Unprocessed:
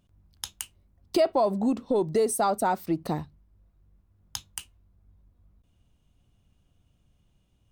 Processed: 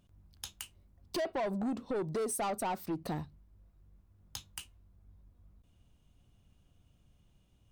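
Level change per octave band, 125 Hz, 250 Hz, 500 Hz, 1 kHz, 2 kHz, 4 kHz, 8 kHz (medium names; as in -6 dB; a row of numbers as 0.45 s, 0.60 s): -6.0 dB, -9.0 dB, -11.0 dB, -10.0 dB, -5.0 dB, -6.5 dB, -7.0 dB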